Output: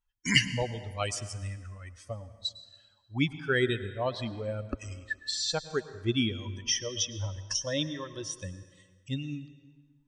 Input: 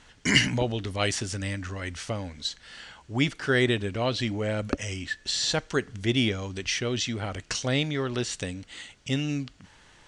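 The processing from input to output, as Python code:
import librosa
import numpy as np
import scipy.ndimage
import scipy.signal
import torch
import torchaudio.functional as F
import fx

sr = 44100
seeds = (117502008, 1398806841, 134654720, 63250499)

y = fx.bin_expand(x, sr, power=2.0)
y = fx.ripple_eq(y, sr, per_octave=1.2, db=17, at=(6.45, 8.63))
y = fx.rev_plate(y, sr, seeds[0], rt60_s=1.6, hf_ratio=0.7, predelay_ms=90, drr_db=13.5)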